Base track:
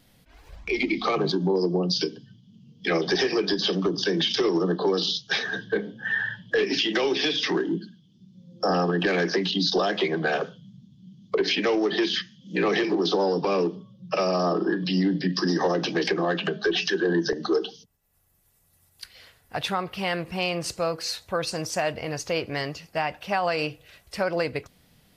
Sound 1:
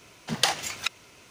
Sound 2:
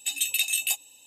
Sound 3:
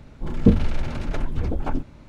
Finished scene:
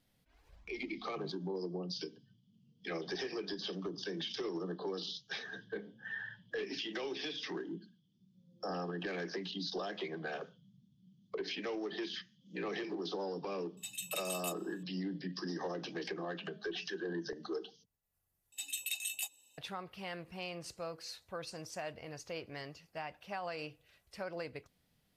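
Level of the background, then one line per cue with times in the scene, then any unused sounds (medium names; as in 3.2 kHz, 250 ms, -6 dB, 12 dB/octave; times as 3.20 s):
base track -16 dB
13.77 s: add 2 -15.5 dB
18.52 s: replace with 2 -13 dB
not used: 1, 3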